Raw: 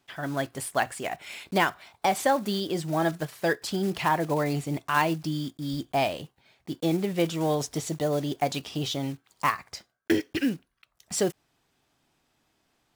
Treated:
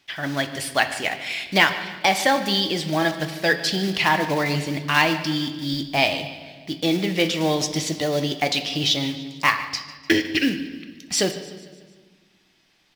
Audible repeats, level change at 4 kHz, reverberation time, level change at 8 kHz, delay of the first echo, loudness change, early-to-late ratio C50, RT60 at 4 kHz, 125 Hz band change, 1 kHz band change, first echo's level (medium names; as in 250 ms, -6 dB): 4, +13.0 dB, 1.5 s, +6.5 dB, 149 ms, +6.0 dB, 10.0 dB, 1.4 s, +3.0 dB, +3.5 dB, -17.0 dB